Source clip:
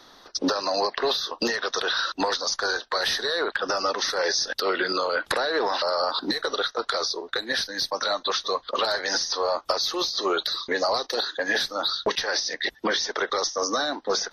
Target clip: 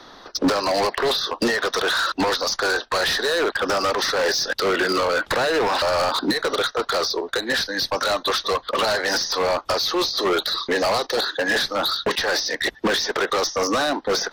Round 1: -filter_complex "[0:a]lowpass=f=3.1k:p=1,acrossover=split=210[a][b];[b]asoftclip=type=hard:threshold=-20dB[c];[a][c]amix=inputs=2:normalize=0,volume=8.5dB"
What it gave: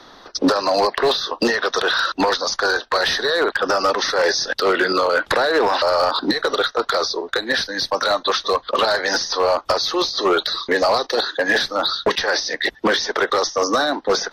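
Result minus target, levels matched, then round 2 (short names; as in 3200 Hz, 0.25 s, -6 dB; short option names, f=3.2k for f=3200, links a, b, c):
hard clip: distortion -10 dB
-filter_complex "[0:a]lowpass=f=3.1k:p=1,acrossover=split=210[a][b];[b]asoftclip=type=hard:threshold=-26.5dB[c];[a][c]amix=inputs=2:normalize=0,volume=8.5dB"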